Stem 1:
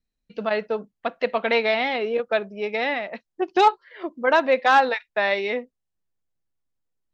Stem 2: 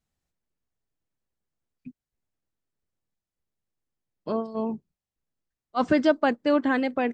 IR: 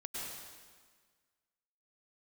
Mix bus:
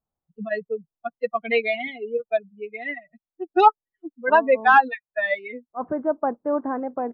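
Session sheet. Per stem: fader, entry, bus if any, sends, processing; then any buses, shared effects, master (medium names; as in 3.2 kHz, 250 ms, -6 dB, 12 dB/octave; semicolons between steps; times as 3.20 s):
-6.0 dB, 0.00 s, no send, expander on every frequency bin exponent 3; low-pass 3.7 kHz 12 dB/octave; bass shelf 460 Hz +10.5 dB
-7.0 dB, 0.00 s, no send, low-pass 1 kHz 24 dB/octave; auto duck -6 dB, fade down 0.20 s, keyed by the first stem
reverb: none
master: peaking EQ 1.4 kHz +11.5 dB 2.9 oct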